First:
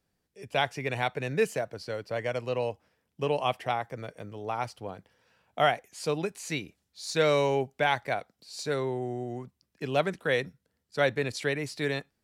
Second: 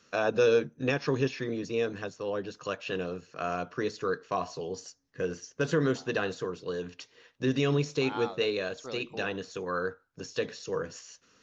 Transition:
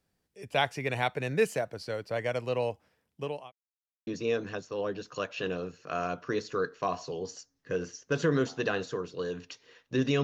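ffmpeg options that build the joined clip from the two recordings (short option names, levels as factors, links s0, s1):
-filter_complex "[0:a]apad=whole_dur=10.23,atrim=end=10.23,asplit=2[s0][s1];[s0]atrim=end=3.52,asetpts=PTS-STARTPTS,afade=t=out:st=2.99:d=0.53[s2];[s1]atrim=start=3.52:end=4.07,asetpts=PTS-STARTPTS,volume=0[s3];[1:a]atrim=start=1.56:end=7.72,asetpts=PTS-STARTPTS,afade=t=in:d=0.004:c=hsin[s4];[s2][s3][s4]concat=n=3:v=0:a=1"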